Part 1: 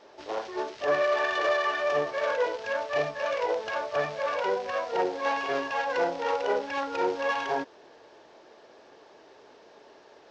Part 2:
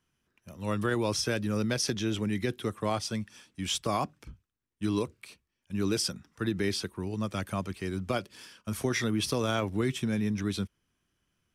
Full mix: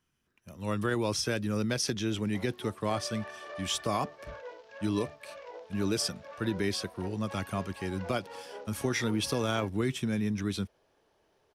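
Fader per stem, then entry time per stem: −17.5, −1.0 decibels; 2.05, 0.00 seconds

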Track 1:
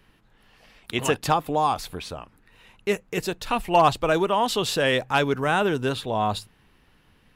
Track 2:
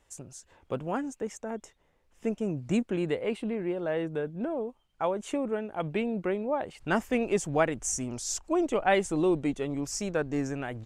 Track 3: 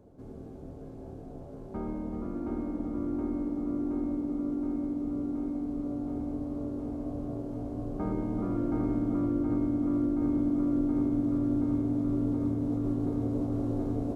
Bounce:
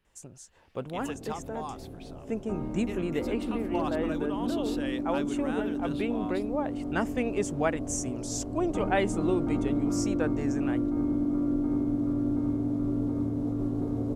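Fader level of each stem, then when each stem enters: −16.5, −2.5, 0.0 decibels; 0.00, 0.05, 0.75 seconds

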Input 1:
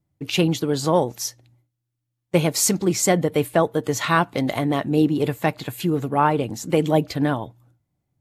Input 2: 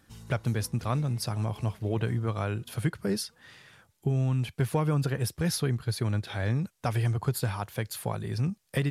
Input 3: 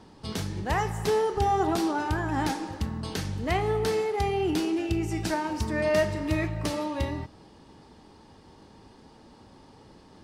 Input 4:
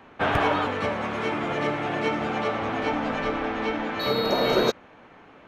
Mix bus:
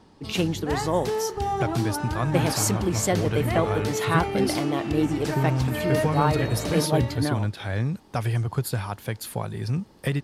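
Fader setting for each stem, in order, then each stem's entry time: −5.5, +2.0, −2.5, −12.5 decibels; 0.00, 1.30, 0.00, 2.15 seconds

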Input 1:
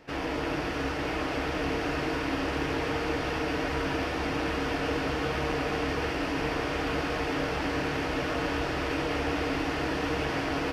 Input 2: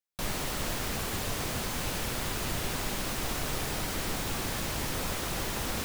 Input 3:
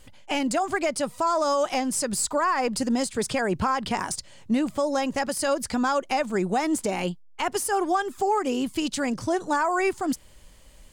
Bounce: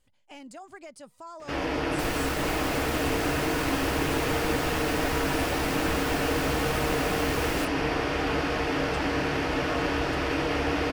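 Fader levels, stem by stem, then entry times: +2.5, −2.0, −19.5 decibels; 1.40, 1.80, 0.00 seconds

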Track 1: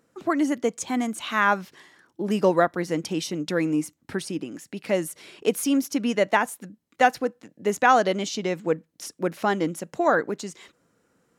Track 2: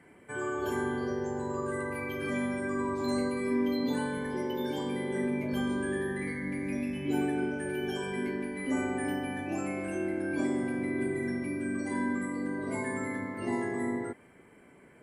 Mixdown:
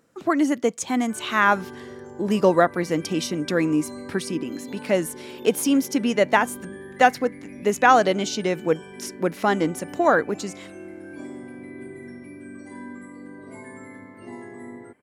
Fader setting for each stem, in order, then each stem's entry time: +2.5, −7.0 decibels; 0.00, 0.80 seconds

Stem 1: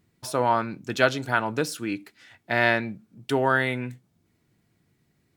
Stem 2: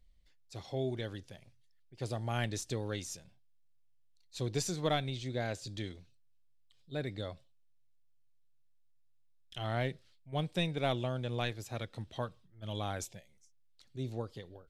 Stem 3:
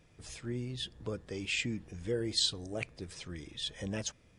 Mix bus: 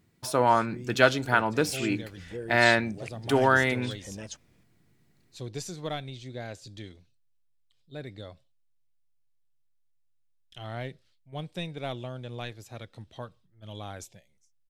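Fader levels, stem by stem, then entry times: +0.5, −2.5, −4.0 decibels; 0.00, 1.00, 0.25 seconds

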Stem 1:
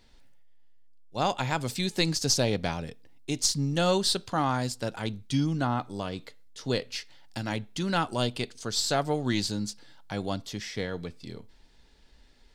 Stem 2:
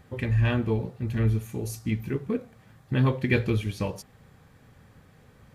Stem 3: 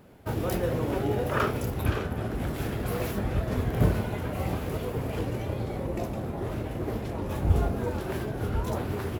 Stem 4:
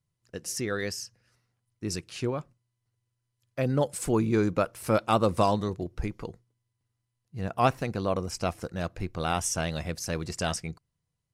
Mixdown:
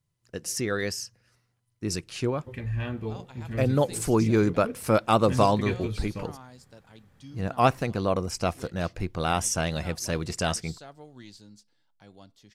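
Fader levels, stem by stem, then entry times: −19.5 dB, −7.5 dB, muted, +2.5 dB; 1.90 s, 2.35 s, muted, 0.00 s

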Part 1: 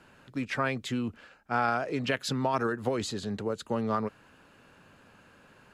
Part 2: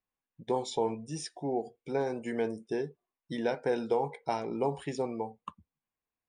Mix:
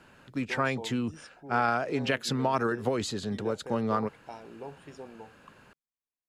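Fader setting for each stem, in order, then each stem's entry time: +1.0, −12.0 decibels; 0.00, 0.00 seconds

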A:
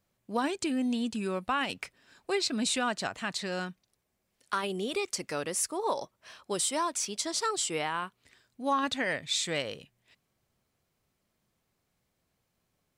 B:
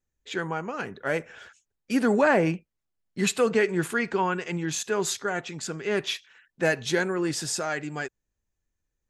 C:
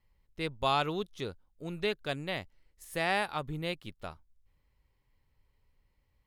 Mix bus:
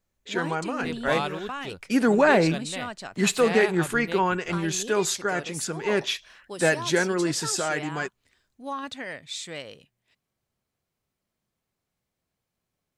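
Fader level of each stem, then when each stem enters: −5.0, +2.0, −0.5 decibels; 0.00, 0.00, 0.45 seconds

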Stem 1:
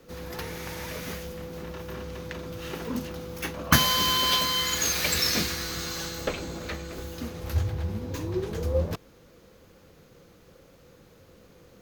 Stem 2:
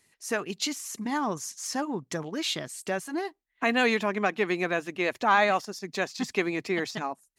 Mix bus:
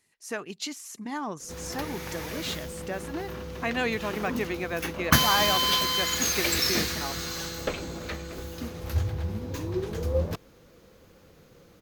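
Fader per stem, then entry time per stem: −0.5, −4.5 decibels; 1.40, 0.00 seconds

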